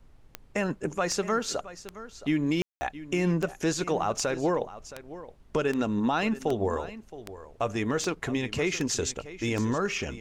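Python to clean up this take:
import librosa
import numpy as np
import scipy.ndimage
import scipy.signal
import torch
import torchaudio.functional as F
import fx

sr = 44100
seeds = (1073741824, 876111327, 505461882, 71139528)

y = fx.fix_declick_ar(x, sr, threshold=10.0)
y = fx.fix_ambience(y, sr, seeds[0], print_start_s=0.05, print_end_s=0.55, start_s=2.62, end_s=2.81)
y = fx.noise_reduce(y, sr, print_start_s=0.05, print_end_s=0.55, reduce_db=23.0)
y = fx.fix_echo_inverse(y, sr, delay_ms=669, level_db=-15.5)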